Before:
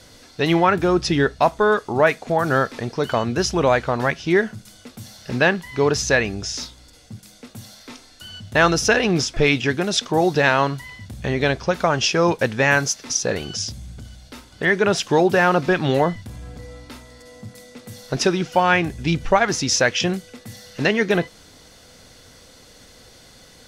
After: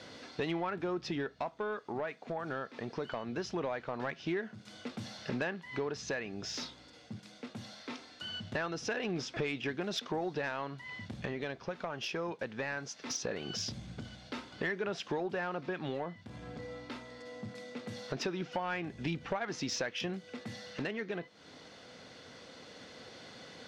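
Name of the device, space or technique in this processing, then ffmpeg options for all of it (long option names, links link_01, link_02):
AM radio: -af "highpass=160,lowpass=3800,acompressor=threshold=-32dB:ratio=6,asoftclip=type=tanh:threshold=-24dB,tremolo=f=0.21:d=0.28"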